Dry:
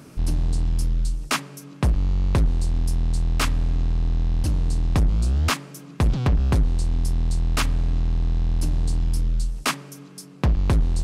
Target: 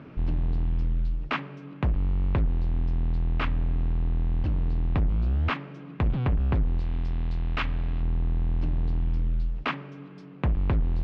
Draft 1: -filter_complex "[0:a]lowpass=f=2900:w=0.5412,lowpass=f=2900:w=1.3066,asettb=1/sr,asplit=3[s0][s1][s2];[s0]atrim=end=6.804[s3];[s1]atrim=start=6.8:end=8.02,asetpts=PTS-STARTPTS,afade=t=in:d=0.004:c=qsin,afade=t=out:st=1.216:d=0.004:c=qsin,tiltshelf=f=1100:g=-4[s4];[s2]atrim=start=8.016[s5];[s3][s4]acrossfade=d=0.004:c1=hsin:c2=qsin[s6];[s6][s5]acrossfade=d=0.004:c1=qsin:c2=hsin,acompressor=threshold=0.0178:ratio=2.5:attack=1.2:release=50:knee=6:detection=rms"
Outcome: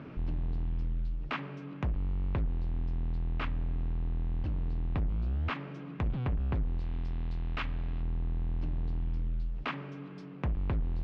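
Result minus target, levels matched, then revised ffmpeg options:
compression: peak gain reduction +7 dB
-filter_complex "[0:a]lowpass=f=2900:w=0.5412,lowpass=f=2900:w=1.3066,asettb=1/sr,asplit=3[s0][s1][s2];[s0]atrim=end=6.804[s3];[s1]atrim=start=6.8:end=8.02,asetpts=PTS-STARTPTS,afade=t=in:d=0.004:c=qsin,afade=t=out:st=1.216:d=0.004:c=qsin,tiltshelf=f=1100:g=-4[s4];[s2]atrim=start=8.016[s5];[s3][s4]acrossfade=d=0.004:c1=hsin:c2=qsin[s6];[s6][s5]acrossfade=d=0.004:c1=qsin:c2=hsin,acompressor=threshold=0.0668:ratio=2.5:attack=1.2:release=50:knee=6:detection=rms"

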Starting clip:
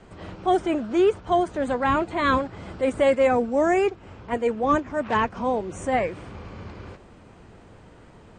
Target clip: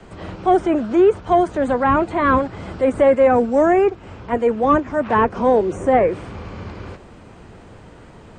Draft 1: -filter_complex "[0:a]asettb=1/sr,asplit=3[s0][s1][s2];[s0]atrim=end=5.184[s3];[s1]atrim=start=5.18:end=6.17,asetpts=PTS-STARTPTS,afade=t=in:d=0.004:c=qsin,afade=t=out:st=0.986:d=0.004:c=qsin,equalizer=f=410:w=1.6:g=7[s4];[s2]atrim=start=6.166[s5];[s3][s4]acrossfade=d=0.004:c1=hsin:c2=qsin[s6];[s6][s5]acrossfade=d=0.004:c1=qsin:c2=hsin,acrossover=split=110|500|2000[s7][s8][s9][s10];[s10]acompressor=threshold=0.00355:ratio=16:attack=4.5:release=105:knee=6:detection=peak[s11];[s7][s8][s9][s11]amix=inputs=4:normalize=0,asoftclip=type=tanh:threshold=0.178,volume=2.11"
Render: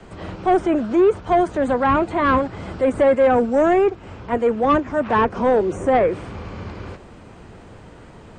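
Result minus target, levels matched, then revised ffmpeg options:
saturation: distortion +11 dB
-filter_complex "[0:a]asettb=1/sr,asplit=3[s0][s1][s2];[s0]atrim=end=5.184[s3];[s1]atrim=start=5.18:end=6.17,asetpts=PTS-STARTPTS,afade=t=in:d=0.004:c=qsin,afade=t=out:st=0.986:d=0.004:c=qsin,equalizer=f=410:w=1.6:g=7[s4];[s2]atrim=start=6.166[s5];[s3][s4]acrossfade=d=0.004:c1=hsin:c2=qsin[s6];[s6][s5]acrossfade=d=0.004:c1=qsin:c2=hsin,acrossover=split=110|500|2000[s7][s8][s9][s10];[s10]acompressor=threshold=0.00355:ratio=16:attack=4.5:release=105:knee=6:detection=peak[s11];[s7][s8][s9][s11]amix=inputs=4:normalize=0,asoftclip=type=tanh:threshold=0.398,volume=2.11"

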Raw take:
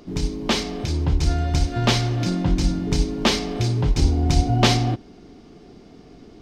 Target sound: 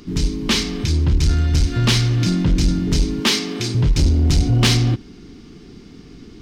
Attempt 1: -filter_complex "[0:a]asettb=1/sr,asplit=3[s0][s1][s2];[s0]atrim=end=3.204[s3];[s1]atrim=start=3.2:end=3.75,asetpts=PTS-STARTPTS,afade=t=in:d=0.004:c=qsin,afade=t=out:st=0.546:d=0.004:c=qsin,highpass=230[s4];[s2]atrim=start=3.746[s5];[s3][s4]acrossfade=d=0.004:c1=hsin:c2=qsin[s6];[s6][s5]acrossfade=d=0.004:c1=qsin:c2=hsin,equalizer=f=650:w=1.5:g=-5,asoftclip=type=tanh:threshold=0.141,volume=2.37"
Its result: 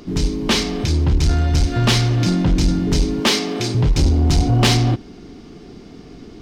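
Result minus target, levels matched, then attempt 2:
500 Hz band +3.5 dB
-filter_complex "[0:a]asettb=1/sr,asplit=3[s0][s1][s2];[s0]atrim=end=3.204[s3];[s1]atrim=start=3.2:end=3.75,asetpts=PTS-STARTPTS,afade=t=in:d=0.004:c=qsin,afade=t=out:st=0.546:d=0.004:c=qsin,highpass=230[s4];[s2]atrim=start=3.746[s5];[s3][s4]acrossfade=d=0.004:c1=hsin:c2=qsin[s6];[s6][s5]acrossfade=d=0.004:c1=qsin:c2=hsin,equalizer=f=650:w=1.5:g=-17,asoftclip=type=tanh:threshold=0.141,volume=2.37"

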